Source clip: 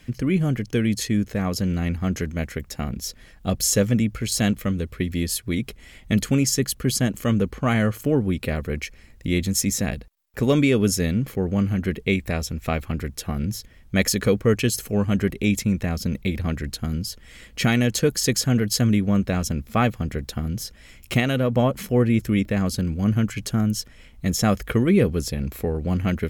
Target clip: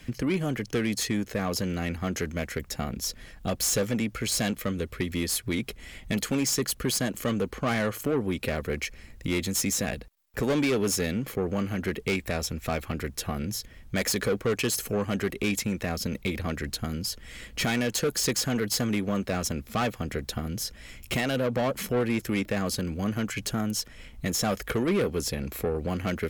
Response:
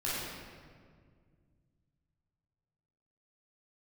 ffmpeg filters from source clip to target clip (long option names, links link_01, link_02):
-filter_complex "[0:a]acrossover=split=300[link_01][link_02];[link_01]acompressor=threshold=-34dB:ratio=6[link_03];[link_02]asoftclip=type=tanh:threshold=-25dB[link_04];[link_03][link_04]amix=inputs=2:normalize=0,volume=2dB"